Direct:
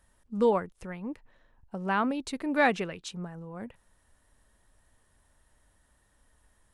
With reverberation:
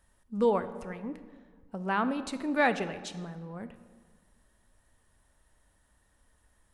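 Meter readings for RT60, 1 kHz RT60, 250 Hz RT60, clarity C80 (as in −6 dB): 1.7 s, 1.6 s, 1.8 s, 14.0 dB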